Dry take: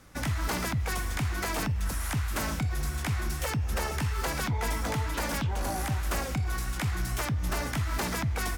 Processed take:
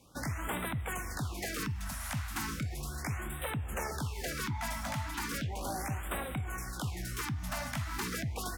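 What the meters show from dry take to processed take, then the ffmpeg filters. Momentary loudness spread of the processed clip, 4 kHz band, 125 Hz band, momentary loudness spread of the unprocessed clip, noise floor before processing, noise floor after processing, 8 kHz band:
2 LU, -5.0 dB, -7.0 dB, 1 LU, -33 dBFS, -41 dBFS, -4.5 dB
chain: -af "highpass=f=94:p=1,afftfilt=real='re*(1-between(b*sr/1024,370*pow(5700/370,0.5+0.5*sin(2*PI*0.36*pts/sr))/1.41,370*pow(5700/370,0.5+0.5*sin(2*PI*0.36*pts/sr))*1.41))':imag='im*(1-between(b*sr/1024,370*pow(5700/370,0.5+0.5*sin(2*PI*0.36*pts/sr))/1.41,370*pow(5700/370,0.5+0.5*sin(2*PI*0.36*pts/sr))*1.41))':win_size=1024:overlap=0.75,volume=-4dB"

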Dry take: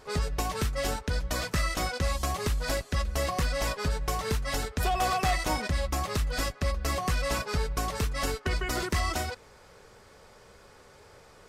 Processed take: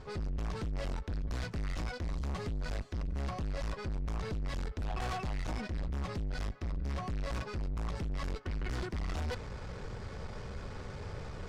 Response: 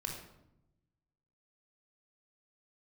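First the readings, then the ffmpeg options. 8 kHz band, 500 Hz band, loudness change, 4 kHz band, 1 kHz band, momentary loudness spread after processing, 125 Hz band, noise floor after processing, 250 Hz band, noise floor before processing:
-18.5 dB, -10.0 dB, -8.5 dB, -13.5 dB, -12.5 dB, 7 LU, -5.0 dB, -45 dBFS, -5.5 dB, -54 dBFS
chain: -af "lowpass=6.1k,bass=f=250:g=13,treble=f=4k:g=-2,areverse,acompressor=threshold=-29dB:ratio=12,areverse,aeval=exprs='(tanh(112*val(0)+0.3)-tanh(0.3))/112':c=same,volume=7.5dB"

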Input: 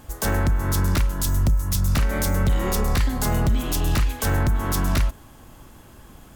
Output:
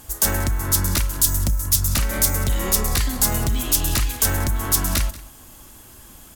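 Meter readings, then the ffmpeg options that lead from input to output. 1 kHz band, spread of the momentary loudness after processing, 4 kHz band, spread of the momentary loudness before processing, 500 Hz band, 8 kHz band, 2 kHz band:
-1.0 dB, 4 LU, +6.0 dB, 2 LU, -2.0 dB, +10.5 dB, +1.0 dB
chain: -af "equalizer=f=12k:t=o:w=2.5:g=14.5,flanger=delay=2.5:depth=1.2:regen=-66:speed=1.7:shape=triangular,aecho=1:1:185:0.112,volume=2dB"

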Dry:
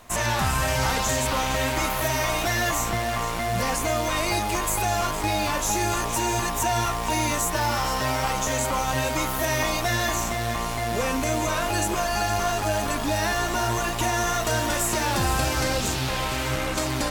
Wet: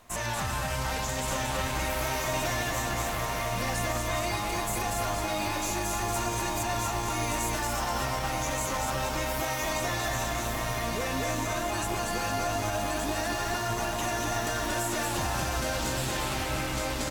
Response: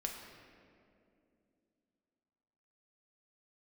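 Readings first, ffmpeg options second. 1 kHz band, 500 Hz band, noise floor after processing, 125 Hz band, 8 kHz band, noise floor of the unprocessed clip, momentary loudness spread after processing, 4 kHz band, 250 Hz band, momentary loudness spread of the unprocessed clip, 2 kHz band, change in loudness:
-5.5 dB, -5.5 dB, -32 dBFS, -5.5 dB, -5.5 dB, -28 dBFS, 1 LU, -5.5 dB, -5.5 dB, 3 LU, -5.5 dB, -5.5 dB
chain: -filter_complex "[0:a]asplit=2[a][b];[b]aecho=0:1:236:0.668[c];[a][c]amix=inputs=2:normalize=0,alimiter=limit=-14.5dB:level=0:latency=1,asplit=2[d][e];[e]aecho=0:1:1172:0.596[f];[d][f]amix=inputs=2:normalize=0,volume=-7dB"

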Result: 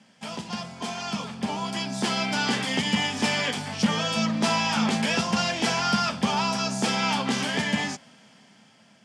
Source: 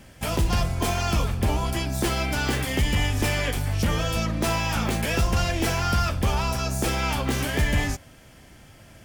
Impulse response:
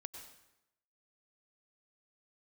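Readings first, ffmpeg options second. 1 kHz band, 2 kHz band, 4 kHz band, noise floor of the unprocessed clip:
+1.5 dB, +1.0 dB, +3.5 dB, -50 dBFS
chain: -af "dynaudnorm=f=470:g=7:m=9dB,highpass=f=170:w=0.5412,highpass=f=170:w=1.3066,equalizer=f=210:t=q:w=4:g=9,equalizer=f=330:t=q:w=4:g=-10,equalizer=f=540:t=q:w=4:g=-3,equalizer=f=900:t=q:w=4:g=4,equalizer=f=3.2k:t=q:w=4:g=4,equalizer=f=4.9k:t=q:w=4:g=5,lowpass=f=8.4k:w=0.5412,lowpass=f=8.4k:w=1.3066,volume=-8dB"

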